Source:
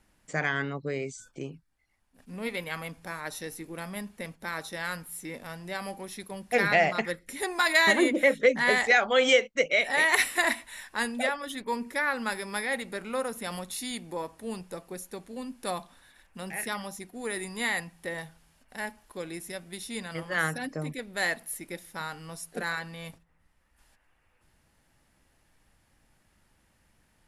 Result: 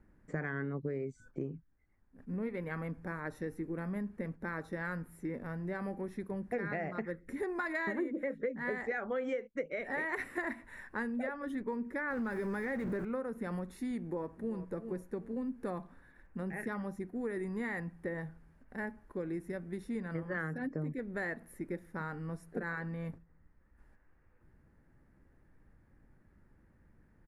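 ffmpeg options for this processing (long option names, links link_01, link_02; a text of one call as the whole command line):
ffmpeg -i in.wav -filter_complex "[0:a]asettb=1/sr,asplit=3[link_01][link_02][link_03];[link_01]atrim=end=12.104[link_04];[link_02]atrim=start=12.1:end=13.05,asetpts=PTS-STARTPTS,afade=type=in:duration=0.004:curve=qsin,afade=type=out:start_time=0.946:duration=0.004:curve=qsin,aeval=exprs='val(0)+0.5*0.0299*sgn(val(0))':channel_layout=same[link_05];[link_03]atrim=start=13.046[link_06];[link_04][link_05]acrossfade=duration=0.004:curve1=hsin:curve2=qsin[link_07];[link_07][link_06]acrossfade=duration=0.004:curve1=qsin:curve2=hsin,asplit=2[link_08][link_09];[link_09]afade=type=in:start_time=13.99:duration=0.01,afade=type=out:start_time=14.62:duration=0.01,aecho=0:1:380|760|1140:0.223872|0.055968|0.013992[link_10];[link_08][link_10]amix=inputs=2:normalize=0,firequalizer=gain_entry='entry(390,0);entry(690,-10);entry(1700,-7);entry(3000,-26)':delay=0.05:min_phase=1,acompressor=threshold=-38dB:ratio=6,volume=4.5dB" out.wav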